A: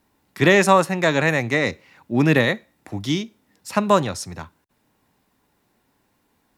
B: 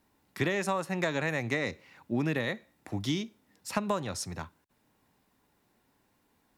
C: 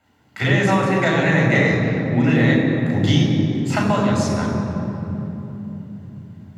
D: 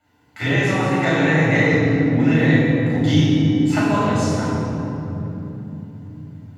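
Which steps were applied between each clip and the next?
compression 10:1, threshold -21 dBFS, peak gain reduction 12.5 dB; trim -4.5 dB
reverberation RT60 3.5 s, pre-delay 7 ms, DRR -2 dB
FDN reverb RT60 0.93 s, low-frequency decay 1.05×, high-frequency decay 0.95×, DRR -4 dB; trim -5.5 dB

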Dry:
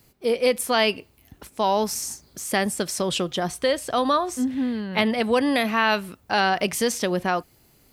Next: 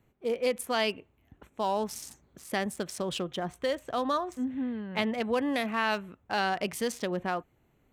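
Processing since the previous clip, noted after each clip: local Wiener filter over 9 samples; trim -7.5 dB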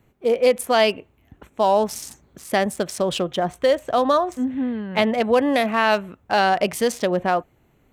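dynamic bell 620 Hz, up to +6 dB, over -43 dBFS, Q 1.8; trim +8 dB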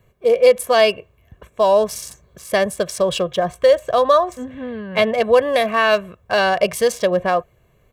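comb 1.8 ms, depth 71%; trim +1 dB

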